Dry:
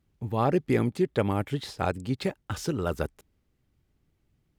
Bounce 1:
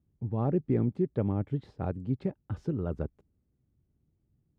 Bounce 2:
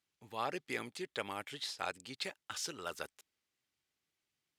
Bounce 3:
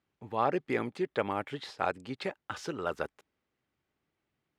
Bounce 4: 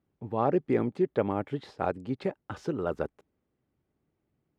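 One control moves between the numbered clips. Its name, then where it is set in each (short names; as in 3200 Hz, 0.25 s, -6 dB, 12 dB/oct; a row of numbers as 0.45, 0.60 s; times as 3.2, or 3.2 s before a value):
band-pass, frequency: 130, 5200, 1400, 530 Hz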